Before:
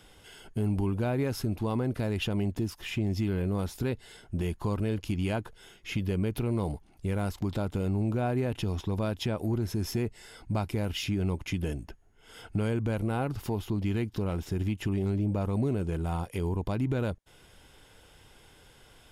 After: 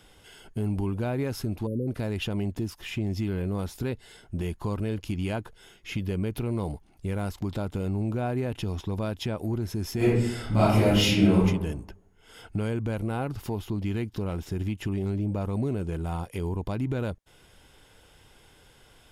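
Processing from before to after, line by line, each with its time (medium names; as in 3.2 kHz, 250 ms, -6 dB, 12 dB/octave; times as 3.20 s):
1.67–1.88 s: spectral selection erased 600–9600 Hz
9.96–11.44 s: reverb throw, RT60 0.84 s, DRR -11 dB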